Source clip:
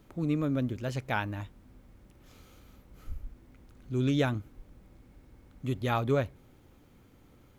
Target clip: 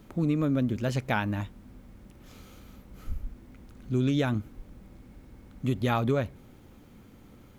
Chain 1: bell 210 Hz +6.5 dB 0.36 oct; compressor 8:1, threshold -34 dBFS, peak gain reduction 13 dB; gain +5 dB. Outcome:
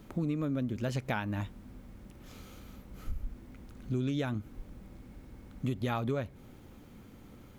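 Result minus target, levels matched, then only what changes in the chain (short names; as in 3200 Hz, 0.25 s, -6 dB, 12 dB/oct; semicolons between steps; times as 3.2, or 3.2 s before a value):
compressor: peak gain reduction +6.5 dB
change: compressor 8:1, threshold -26.5 dBFS, peak gain reduction 6.5 dB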